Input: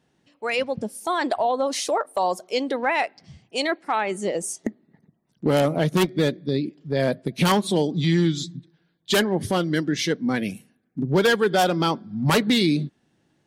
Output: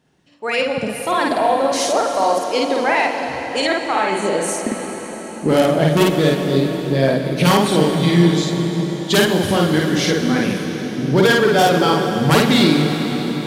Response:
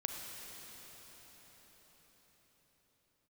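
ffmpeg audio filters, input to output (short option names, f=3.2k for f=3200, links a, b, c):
-filter_complex "[0:a]asplit=2[a][b];[1:a]atrim=start_sample=2205,adelay=52[c];[b][c]afir=irnorm=-1:irlink=0,volume=0dB[d];[a][d]amix=inputs=2:normalize=0,volume=3dB"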